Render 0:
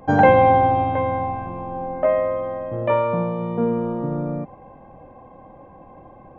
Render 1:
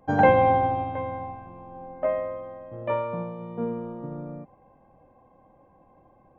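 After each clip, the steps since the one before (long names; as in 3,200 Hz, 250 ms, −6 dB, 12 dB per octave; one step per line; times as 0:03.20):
expander for the loud parts 1.5 to 1, over −29 dBFS
level −3.5 dB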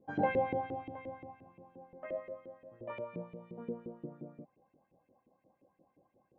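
drawn EQ curve 190 Hz 0 dB, 1,000 Hz −19 dB, 2,900 Hz −6 dB
auto-filter band-pass saw up 5.7 Hz 340–2,700 Hz
level +6 dB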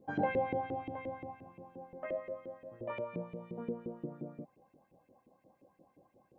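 downward compressor 1.5 to 1, threshold −43 dBFS, peak gain reduction 6.5 dB
level +4.5 dB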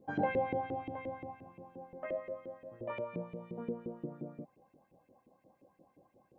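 no processing that can be heard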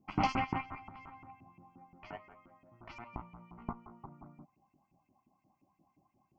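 harmonic generator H 7 −14 dB, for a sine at −20 dBFS
phaser with its sweep stopped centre 2,500 Hz, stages 8
level +6 dB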